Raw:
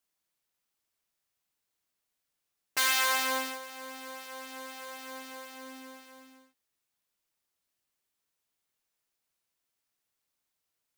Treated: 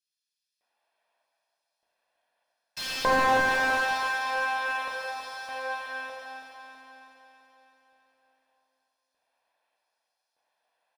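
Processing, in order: peaking EQ 9.8 kHz +13.5 dB 0.58 oct; comb 1.2 ms, depth 60%; LFO high-pass square 0.82 Hz 580–5200 Hz; distance through air 370 m; feedback delay 327 ms, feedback 59%, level -8 dB; plate-style reverb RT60 2.6 s, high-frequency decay 0.8×, DRR -3 dB; slew-rate limiter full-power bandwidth 41 Hz; trim +8 dB

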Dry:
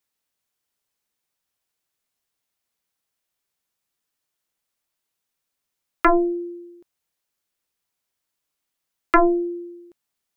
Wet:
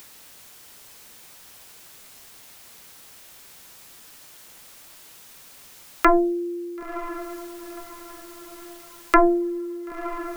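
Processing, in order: upward compressor, threshold -21 dBFS; echo that smears into a reverb 994 ms, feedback 42%, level -12.5 dB; on a send at -21.5 dB: reverberation RT60 0.15 s, pre-delay 47 ms

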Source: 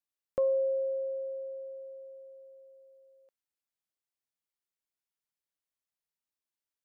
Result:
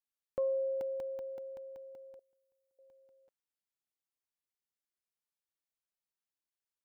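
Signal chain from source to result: 2.19–2.79 s: differentiator; crackling interface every 0.19 s, samples 64, zero, from 0.81 s; trim -5 dB

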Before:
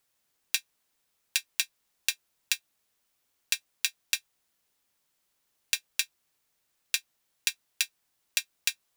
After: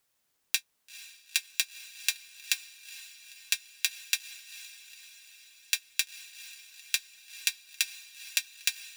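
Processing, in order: echo that smears into a reverb 461 ms, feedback 61%, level -14.5 dB

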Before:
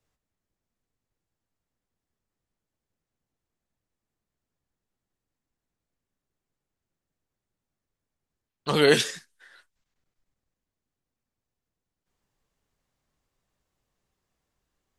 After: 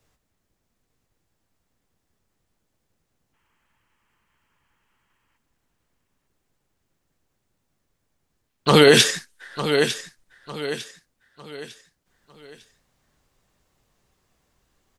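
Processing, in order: time-frequency box 3.34–5.37 s, 830–3300 Hz +12 dB; feedback delay 902 ms, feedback 37%, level -12 dB; loudness maximiser +12 dB; trim -1 dB

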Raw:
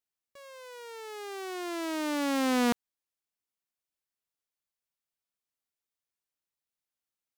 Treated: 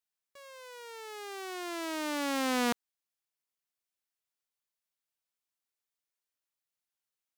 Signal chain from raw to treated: bass shelf 440 Hz -7 dB

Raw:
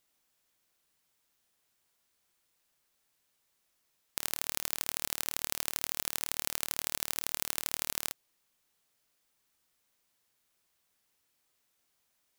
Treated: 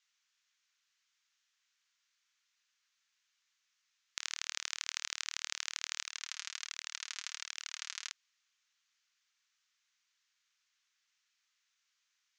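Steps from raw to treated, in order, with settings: high-pass 1.3 kHz 24 dB/octave; 6.04–8.10 s: flange 1.3 Hz, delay 0.3 ms, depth 4.8 ms, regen +33%; elliptic low-pass 6.6 kHz, stop band 80 dB; trim +1.5 dB

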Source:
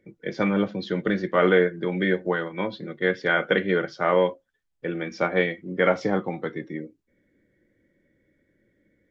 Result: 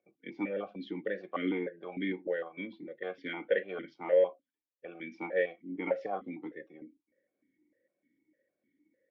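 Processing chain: stepped vowel filter 6.6 Hz

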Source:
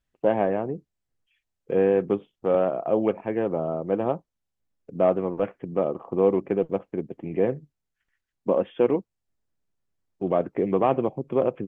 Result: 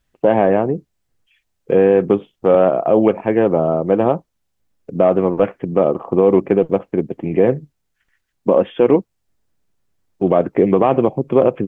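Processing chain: loudness maximiser +12.5 dB; trim -1.5 dB

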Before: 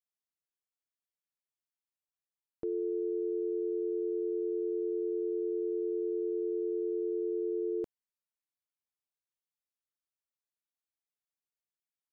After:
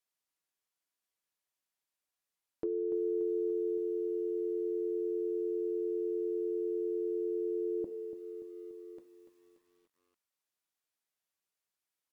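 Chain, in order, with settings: on a send at -8.5 dB: reverberation RT60 0.35 s, pre-delay 3 ms; on the sum: peak limiter -29.5 dBFS, peak gain reduction 3.5 dB; bass shelf 250 Hz -6 dB; delay 1142 ms -17 dB; low-pass that closes with the level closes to 470 Hz, closed at -36.5 dBFS; bit-crushed delay 289 ms, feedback 55%, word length 12-bit, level -11 dB; trim +5.5 dB

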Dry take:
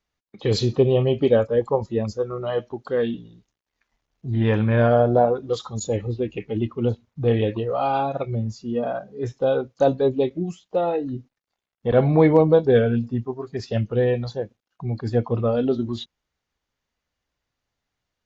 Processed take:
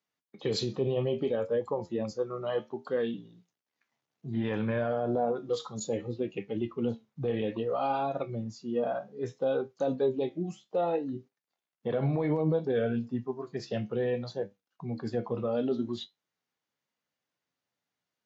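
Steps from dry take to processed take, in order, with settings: high-pass 130 Hz 24 dB/octave; peak limiter -15 dBFS, peak gain reduction 11 dB; flange 0.62 Hz, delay 9.9 ms, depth 5.1 ms, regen +66%; trim -1.5 dB

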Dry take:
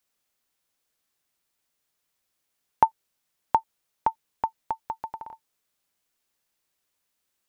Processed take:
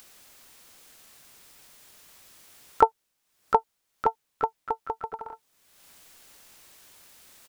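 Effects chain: harmony voices -12 st -7 dB, -4 st -17 dB, +7 st -9 dB; upward compressor, threshold -34 dBFS

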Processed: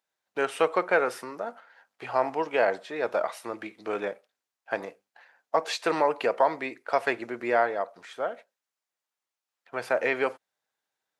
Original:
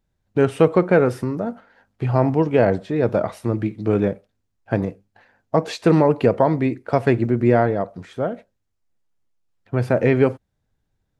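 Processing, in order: high-pass 780 Hz 12 dB/octave

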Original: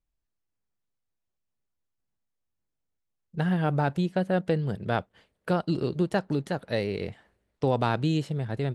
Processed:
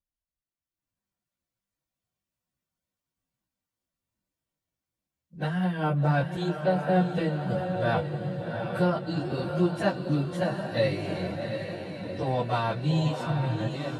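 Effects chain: on a send at -19 dB: reverberation RT60 1.8 s, pre-delay 5 ms; on the sum: level rider gain up to 12 dB; echo that smears into a reverb 458 ms, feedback 56%, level -6 dB; dynamic bell 250 Hz, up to -5 dB, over -29 dBFS, Q 2.3; plain phase-vocoder stretch 1.6×; comb of notches 420 Hz; trim -6.5 dB

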